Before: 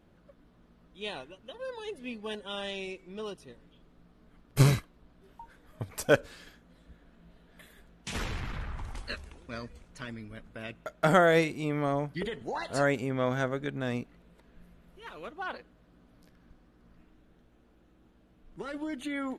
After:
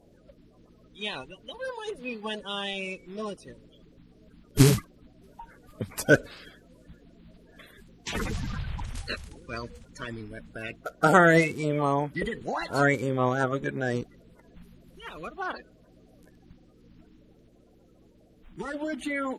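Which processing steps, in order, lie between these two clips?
spectral magnitudes quantised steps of 30 dB
level +4.5 dB

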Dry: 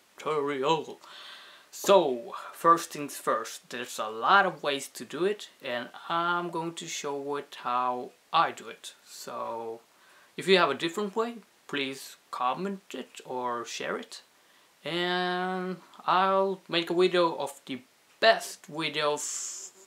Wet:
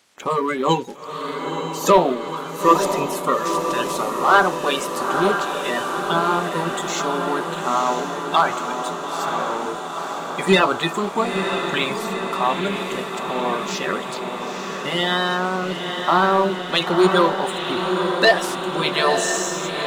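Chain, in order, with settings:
spectral magnitudes quantised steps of 30 dB
leveller curve on the samples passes 1
feedback delay with all-pass diffusion 932 ms, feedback 70%, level −5.5 dB
level +4.5 dB

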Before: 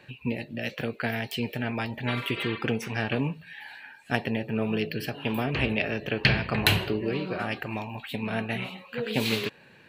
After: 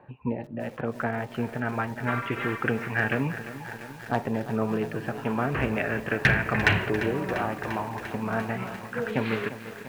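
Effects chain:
auto-filter low-pass saw up 0.29 Hz 940–1,900 Hz
asymmetric clip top −12.5 dBFS
feedback echo at a low word length 346 ms, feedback 80%, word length 7 bits, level −12.5 dB

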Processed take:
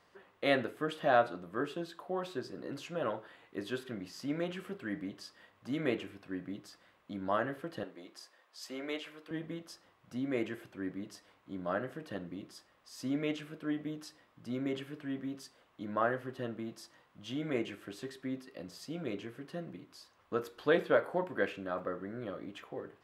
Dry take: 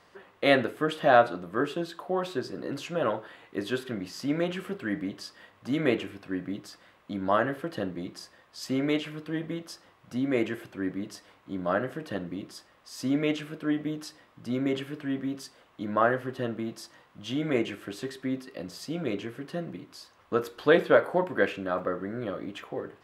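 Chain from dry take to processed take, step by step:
0:07.83–0:09.31: high-pass filter 430 Hz 12 dB per octave
level −7.5 dB

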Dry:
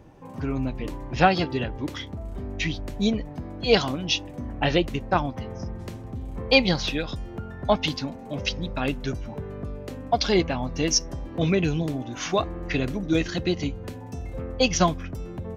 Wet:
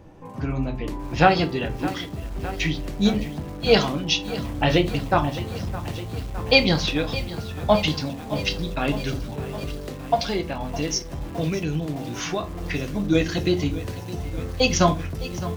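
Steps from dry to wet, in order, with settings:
0:10.14–0:12.95: downward compressor 2.5 to 1, threshold −28 dBFS, peak gain reduction 8.5 dB
convolution reverb RT60 0.30 s, pre-delay 6 ms, DRR 6.5 dB
feedback echo at a low word length 612 ms, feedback 80%, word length 6 bits, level −14.5 dB
level +1.5 dB

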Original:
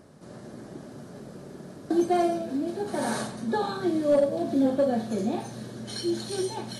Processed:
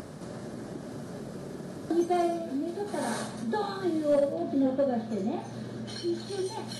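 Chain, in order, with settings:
upward compression, threshold −28 dBFS
0:04.33–0:06.46: low-pass filter 3,700 Hz 6 dB per octave
level −3 dB

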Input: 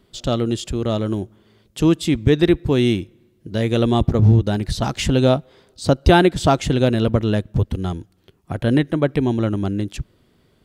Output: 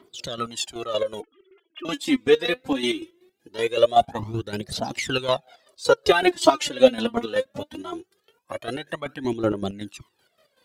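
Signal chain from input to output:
0:01.20–0:01.85: three sine waves on the formant tracks
high-pass filter 380 Hz 12 dB per octave
phase shifter 0.21 Hz, delay 4.3 ms, feedback 76%
square-wave tremolo 5.3 Hz, depth 60%, duty 45%
flanger whose copies keep moving one way rising 1.4 Hz
level +3.5 dB

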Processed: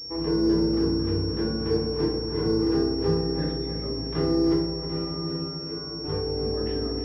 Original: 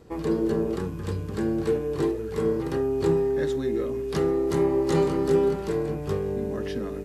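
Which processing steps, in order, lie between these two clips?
0:03.56–0:03.82: time-frequency box erased 220–1,900 Hz
0:04.54–0:06.04: tuned comb filter 86 Hz, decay 0.33 s, harmonics all, mix 90%
on a send: feedback echo with a low-pass in the loop 314 ms, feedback 61%, low-pass 1,800 Hz, level −6.5 dB
on the sum: feedback delay network reverb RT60 0.79 s, low-frequency decay 1.55×, high-frequency decay 0.55×, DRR −1.5 dB
switching amplifier with a slow clock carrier 5,500 Hz
level −5.5 dB

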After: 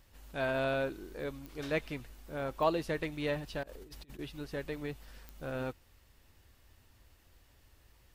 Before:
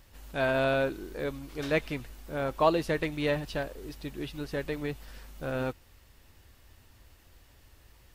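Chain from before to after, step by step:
0:03.63–0:04.19: compressor whose output falls as the input rises −44 dBFS, ratio −0.5
digital clicks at 0:01.46/0:02.63/0:05.29, −25 dBFS
level −5.5 dB

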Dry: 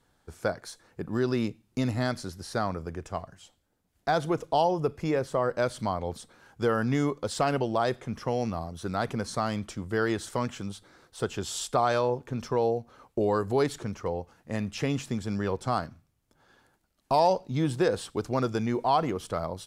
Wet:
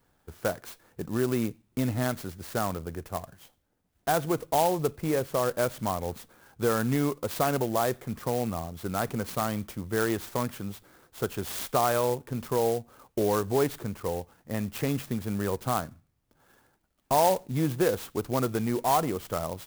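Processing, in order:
converter with an unsteady clock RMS 0.055 ms

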